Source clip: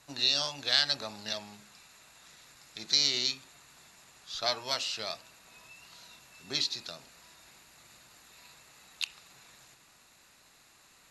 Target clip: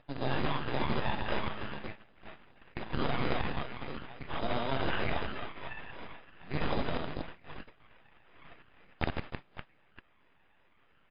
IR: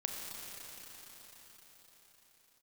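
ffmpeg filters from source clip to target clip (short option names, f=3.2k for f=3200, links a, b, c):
-filter_complex "[0:a]asplit=2[a][b];[b]alimiter=limit=-21dB:level=0:latency=1:release=79,volume=-1.5dB[c];[a][c]amix=inputs=2:normalize=0,aecho=1:1:60|156|309.6|555.4|948.6:0.631|0.398|0.251|0.158|0.1,aeval=exprs='max(val(0),0)':c=same,acompressor=mode=upward:threshold=-42dB:ratio=2.5,agate=range=-21dB:threshold=-46dB:ratio=16:detection=peak,aphaser=in_gain=1:out_gain=1:delay=1.2:decay=0.6:speed=0.43:type=triangular,acrusher=samples=10:mix=1:aa=0.000001,areverse,acompressor=threshold=-27dB:ratio=16,areverse,volume=3dB" -ar 11025 -c:a libmp3lame -b:a 32k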